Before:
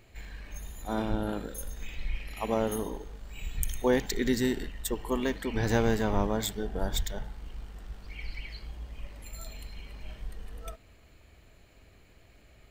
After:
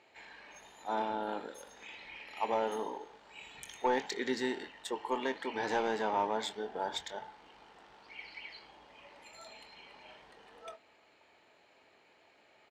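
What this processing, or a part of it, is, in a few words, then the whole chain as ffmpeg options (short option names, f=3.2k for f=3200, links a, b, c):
intercom: -filter_complex "[0:a]highpass=400,lowpass=4.7k,equalizer=f=880:t=o:w=0.23:g=10,asoftclip=type=tanh:threshold=-19dB,asplit=2[a][b];[b]adelay=23,volume=-12dB[c];[a][c]amix=inputs=2:normalize=0,volume=-1.5dB"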